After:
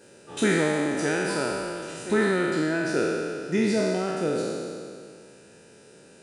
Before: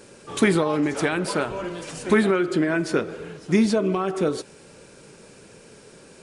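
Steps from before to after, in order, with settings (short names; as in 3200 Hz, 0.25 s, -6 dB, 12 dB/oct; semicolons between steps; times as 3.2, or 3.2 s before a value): spectral trails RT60 2.27 s; notch comb 1100 Hz; gain -6.5 dB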